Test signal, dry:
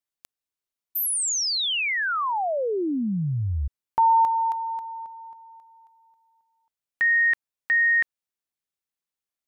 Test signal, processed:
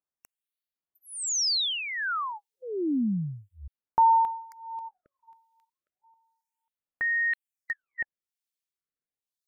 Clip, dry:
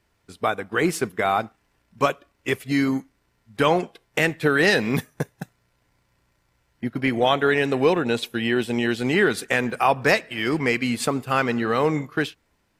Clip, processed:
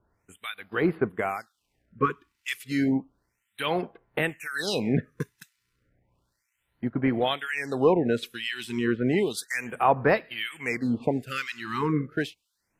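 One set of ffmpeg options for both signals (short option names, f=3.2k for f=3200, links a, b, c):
-filter_complex "[0:a]acrossover=split=1800[a][b];[a]aeval=exprs='val(0)*(1-1/2+1/2*cos(2*PI*1*n/s))':c=same[c];[b]aeval=exprs='val(0)*(1-1/2-1/2*cos(2*PI*1*n/s))':c=same[d];[c][d]amix=inputs=2:normalize=0,afftfilt=real='re*(1-between(b*sr/1024,590*pow(7500/590,0.5+0.5*sin(2*PI*0.32*pts/sr))/1.41,590*pow(7500/590,0.5+0.5*sin(2*PI*0.32*pts/sr))*1.41))':imag='im*(1-between(b*sr/1024,590*pow(7500/590,0.5+0.5*sin(2*PI*0.32*pts/sr))/1.41,590*pow(7500/590,0.5+0.5*sin(2*PI*0.32*pts/sr))*1.41))':win_size=1024:overlap=0.75"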